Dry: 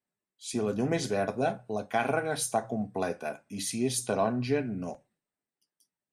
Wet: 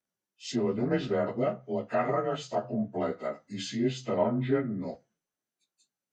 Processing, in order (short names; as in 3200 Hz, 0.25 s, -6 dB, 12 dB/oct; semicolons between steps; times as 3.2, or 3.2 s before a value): inharmonic rescaling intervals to 91%; treble ducked by the level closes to 2700 Hz, closed at -30.5 dBFS; gain +2.5 dB